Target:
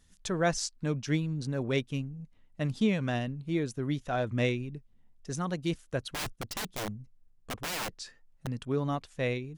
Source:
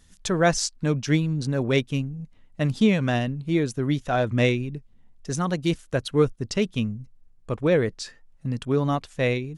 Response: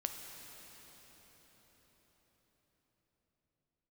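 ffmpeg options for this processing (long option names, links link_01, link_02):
-filter_complex "[0:a]asettb=1/sr,asplit=3[link_01][link_02][link_03];[link_01]atrim=end=6.134[link_04];[link_02]atrim=start=6.13:end=8.47,asetpts=PTS-STARTPTS,afade=type=in:duration=0.004:curve=qsin,afade=type=out:start_time=2.336:duration=0.004:curve=qsin,aeval=exprs='(mod(12.6*val(0)+1,2)-1)/12.6':channel_layout=same[link_05];[link_03]atrim=start=8.466[link_06];[link_04][link_05]acrossfade=duration=0.004:curve1=hsin:curve2=qsin[link_07];[link_07][link_06]acrossfade=duration=0.004:curve1=qsin:curve2=hsin,volume=-7.5dB"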